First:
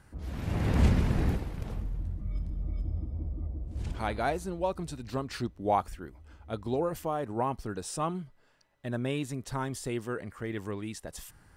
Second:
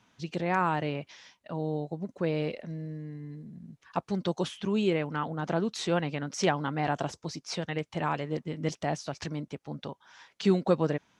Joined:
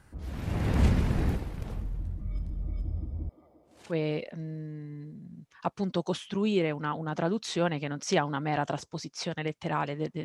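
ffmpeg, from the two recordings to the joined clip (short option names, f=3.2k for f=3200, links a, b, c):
-filter_complex "[0:a]asettb=1/sr,asplit=3[a][b][c];[a]atrim=end=3.294[d];[b]atrim=start=3.29:end=3.95,asetpts=PTS-STARTPTS,afade=t=in:d=0.004:c=qsin,afade=t=out:st=0.656:d=0.004:c=qsin,highpass=570[e];[c]atrim=start=3.946[f];[d][e]acrossfade=d=0.004:c1=hsin:c2=qsin[g];[g][f]acrossfade=d=0.004:c1=qsin:c2=hsin,apad=whole_dur=10.24,atrim=end=10.24,atrim=end=3.95,asetpts=PTS-STARTPTS[h];[1:a]atrim=start=2.18:end=8.55,asetpts=PTS-STARTPTS[i];[h][i]acrossfade=d=0.08:c1=tri:c2=tri"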